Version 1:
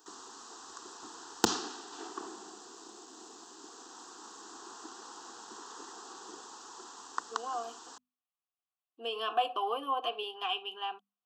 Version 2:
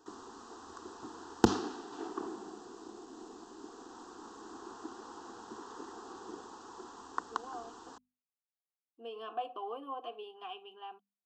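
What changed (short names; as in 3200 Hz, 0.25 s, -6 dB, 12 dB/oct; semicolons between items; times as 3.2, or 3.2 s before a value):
speech -9.5 dB; master: add tilt -3.5 dB/oct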